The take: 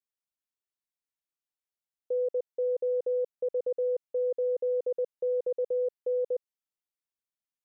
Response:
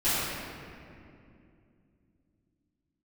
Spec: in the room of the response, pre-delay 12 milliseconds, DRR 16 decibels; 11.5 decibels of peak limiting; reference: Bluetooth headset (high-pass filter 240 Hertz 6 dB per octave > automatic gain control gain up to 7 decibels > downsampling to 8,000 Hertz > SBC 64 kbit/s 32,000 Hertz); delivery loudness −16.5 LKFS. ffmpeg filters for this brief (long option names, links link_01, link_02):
-filter_complex "[0:a]alimiter=level_in=12dB:limit=-24dB:level=0:latency=1,volume=-12dB,asplit=2[link_01][link_02];[1:a]atrim=start_sample=2205,adelay=12[link_03];[link_02][link_03]afir=irnorm=-1:irlink=0,volume=-30dB[link_04];[link_01][link_04]amix=inputs=2:normalize=0,highpass=frequency=240:poles=1,dynaudnorm=maxgain=7dB,aresample=8000,aresample=44100,volume=26.5dB" -ar 32000 -c:a sbc -b:a 64k